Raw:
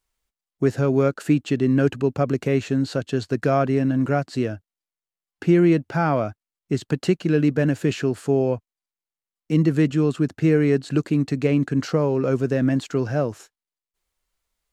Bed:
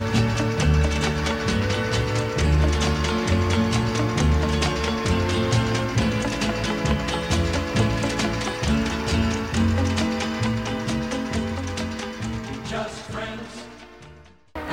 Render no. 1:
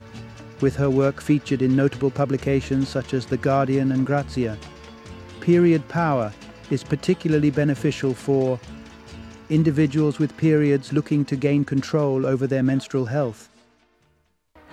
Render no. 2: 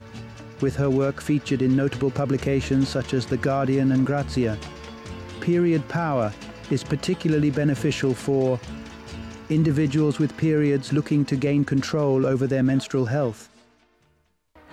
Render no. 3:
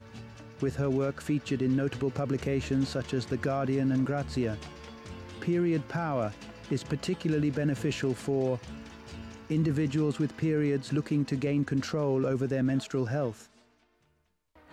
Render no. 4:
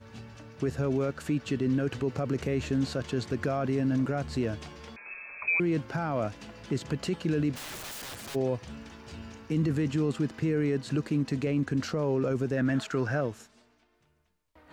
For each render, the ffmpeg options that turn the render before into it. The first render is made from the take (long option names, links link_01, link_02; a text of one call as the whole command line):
ffmpeg -i in.wav -i bed.wav -filter_complex "[1:a]volume=-18dB[link_01];[0:a][link_01]amix=inputs=2:normalize=0" out.wav
ffmpeg -i in.wav -af "dynaudnorm=framelen=100:gausssize=31:maxgain=4dB,alimiter=limit=-13dB:level=0:latency=1:release=16" out.wav
ffmpeg -i in.wav -af "volume=-7dB" out.wav
ffmpeg -i in.wav -filter_complex "[0:a]asettb=1/sr,asplit=3[link_01][link_02][link_03];[link_01]atrim=end=4.964[link_04];[link_02]atrim=start=4.96:end=5.6,asetpts=PTS-STARTPTS,afade=type=in:duration=0.004:curve=qsin,afade=type=out:start_time=0.636:duration=0.004:curve=qsin,lowpass=frequency=2300:width_type=q:width=0.5098,lowpass=frequency=2300:width_type=q:width=0.6013,lowpass=frequency=2300:width_type=q:width=0.9,lowpass=frequency=2300:width_type=q:width=2.563,afreqshift=-2700[link_05];[link_03]atrim=start=5.596[link_06];[link_04][link_05]acrossfade=duration=0.004:curve1=hsin:curve2=qsin[link_07];[link_07][link_06]acrossfade=duration=0.004:curve1=qsin:curve2=hsin,asplit=3[link_08][link_09][link_10];[link_08]afade=type=out:start_time=7.55:duration=0.02[link_11];[link_09]aeval=exprs='(mod(59.6*val(0)+1,2)-1)/59.6':channel_layout=same,afade=type=in:start_time=7.55:duration=0.02,afade=type=out:start_time=8.34:duration=0.02[link_12];[link_10]afade=type=in:start_time=8.34:duration=0.02[link_13];[link_11][link_12][link_13]amix=inputs=3:normalize=0,asettb=1/sr,asplit=3[link_14][link_15][link_16];[link_14]atrim=end=12.574[link_17];[link_15]atrim=start=12.57:end=13.21,asetpts=PTS-STARTPTS,afade=type=in:duration=0.004:curve=qsin,afade=type=out:start_time=0.636:duration=0.004:curve=qsin,equalizer=frequency=1500:width_type=o:width=1.3:gain=8[link_18];[link_16]atrim=start=13.206[link_19];[link_17][link_18]acrossfade=duration=0.004:curve1=hsin:curve2=qsin[link_20];[link_20][link_19]acrossfade=duration=0.004:curve1=qsin:curve2=hsin" out.wav